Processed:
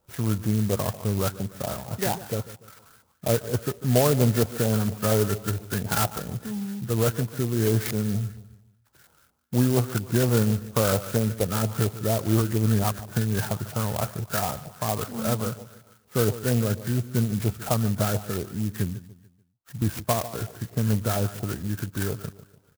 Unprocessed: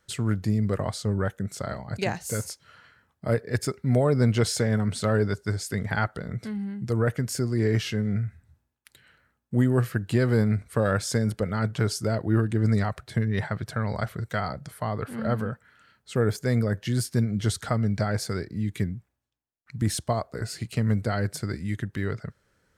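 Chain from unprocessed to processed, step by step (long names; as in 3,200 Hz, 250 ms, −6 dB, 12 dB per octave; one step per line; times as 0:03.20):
hearing-aid frequency compression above 1,200 Hz 1.5 to 1
on a send: repeating echo 146 ms, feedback 40%, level −15.5 dB
on the sum: auto-filter low-pass saw up 4.3 Hz 740–2,400 Hz
converter with an unsteady clock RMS 0.11 ms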